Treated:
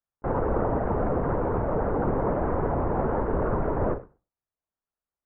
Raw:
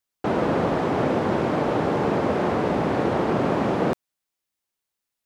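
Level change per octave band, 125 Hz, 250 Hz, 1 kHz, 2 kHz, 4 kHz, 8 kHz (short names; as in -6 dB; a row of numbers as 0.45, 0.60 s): -0.5 dB, -6.0 dB, -4.0 dB, -9.0 dB, under -25 dB, n/a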